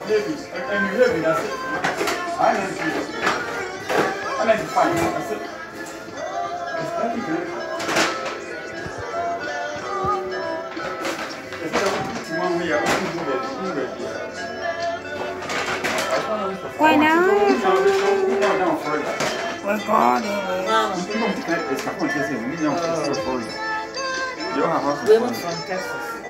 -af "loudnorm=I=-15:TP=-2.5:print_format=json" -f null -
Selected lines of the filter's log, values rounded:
"input_i" : "-22.3",
"input_tp" : "-3.9",
"input_lra" : "6.3",
"input_thresh" : "-32.4",